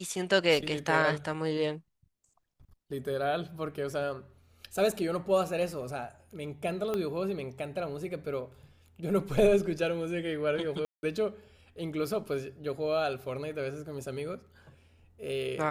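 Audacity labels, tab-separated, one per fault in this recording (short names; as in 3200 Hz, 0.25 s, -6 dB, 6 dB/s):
6.940000	6.940000	pop -19 dBFS
10.850000	11.030000	gap 0.18 s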